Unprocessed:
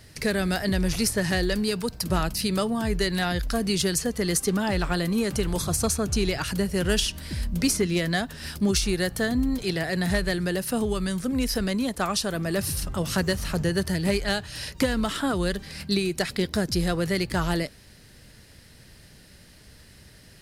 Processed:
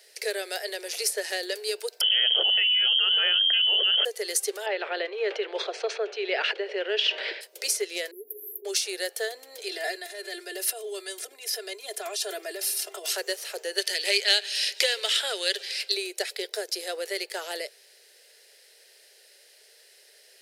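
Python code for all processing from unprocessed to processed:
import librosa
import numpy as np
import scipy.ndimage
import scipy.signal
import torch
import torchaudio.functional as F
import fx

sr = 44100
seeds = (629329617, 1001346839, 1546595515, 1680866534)

y = fx.chain(x, sr, fx.peak_eq(hz=830.0, db=-12.0, octaves=0.74),
    fx.freq_invert(carrier_hz=3200),
    fx.env_flatten(amount_pct=100), at=(2.01, 4.05))
y = fx.chain(y, sr, fx.lowpass(hz=3100.0, slope=24),
    fx.env_flatten(amount_pct=100), at=(4.66, 7.41))
y = fx.chain(y, sr, fx.brickwall_bandstop(low_hz=450.0, high_hz=11000.0),
    fx.low_shelf(hz=270.0, db=-8.0),
    fx.env_flatten(amount_pct=70), at=(8.11, 8.65))
y = fx.chain(y, sr, fx.over_compress(threshold_db=-30.0, ratio=-1.0),
    fx.comb(ms=2.9, depth=0.92), at=(9.68, 13.13))
y = fx.chain(y, sr, fx.weighting(curve='D'),
    fx.echo_feedback(ms=138, feedback_pct=60, wet_db=-23.5), at=(13.78, 15.92))
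y = scipy.signal.sosfilt(scipy.signal.butter(12, 400.0, 'highpass', fs=sr, output='sos'), y)
y = fx.peak_eq(y, sr, hz=1100.0, db=-14.0, octaves=0.82)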